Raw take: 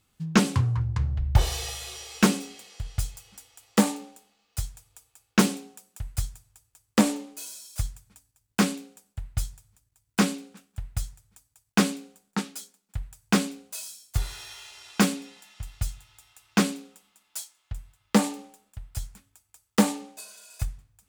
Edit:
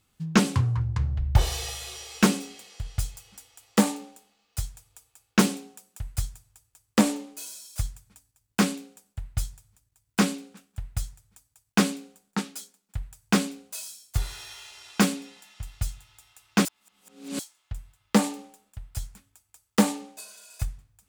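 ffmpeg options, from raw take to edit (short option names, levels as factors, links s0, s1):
-filter_complex "[0:a]asplit=3[s0][s1][s2];[s0]atrim=end=16.652[s3];[s1]atrim=start=16.648:end=17.392,asetpts=PTS-STARTPTS,areverse[s4];[s2]atrim=start=17.388[s5];[s3][s4]acrossfade=d=0.004:c1=hsin:c2=hsin[s6];[s6][s5]acrossfade=d=0.004:c1=hsin:c2=hsin"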